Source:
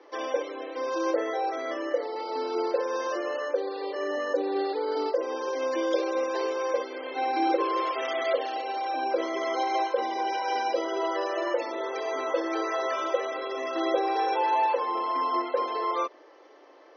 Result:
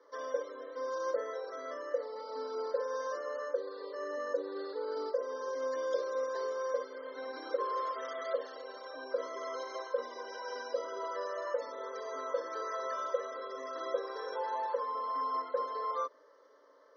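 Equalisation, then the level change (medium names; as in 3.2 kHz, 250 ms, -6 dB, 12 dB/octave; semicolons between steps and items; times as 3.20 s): peaking EQ 170 Hz -2.5 dB 1.6 oct; static phaser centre 510 Hz, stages 8; -5.5 dB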